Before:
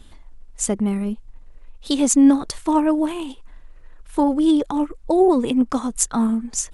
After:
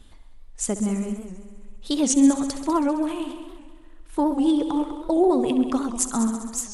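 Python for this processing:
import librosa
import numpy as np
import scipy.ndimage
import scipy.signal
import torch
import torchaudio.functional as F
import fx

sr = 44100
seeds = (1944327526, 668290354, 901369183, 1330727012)

p1 = x + fx.echo_heads(x, sr, ms=66, heads='all three', feedback_pct=54, wet_db=-14.5, dry=0)
p2 = fx.record_warp(p1, sr, rpm=78.0, depth_cents=160.0)
y = p2 * 10.0 ** (-4.0 / 20.0)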